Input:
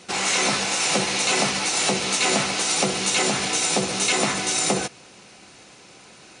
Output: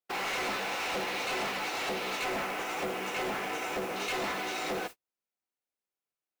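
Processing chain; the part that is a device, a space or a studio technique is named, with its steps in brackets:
0:02.24–0:03.96: parametric band 4,200 Hz −11.5 dB 0.65 octaves
aircraft radio (band-pass filter 310–2,500 Hz; hard clipping −26 dBFS, distortion −8 dB; white noise bed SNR 17 dB; noise gate −36 dBFS, range −46 dB)
level −4 dB

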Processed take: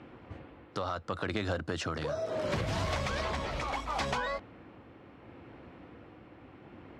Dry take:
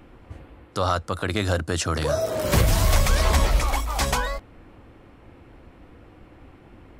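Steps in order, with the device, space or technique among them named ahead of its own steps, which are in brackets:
AM radio (band-pass filter 110–4,100 Hz; downward compressor, threshold −28 dBFS, peak gain reduction 10.5 dB; soft clipping −19 dBFS, distortion −25 dB; amplitude tremolo 0.71 Hz, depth 28%)

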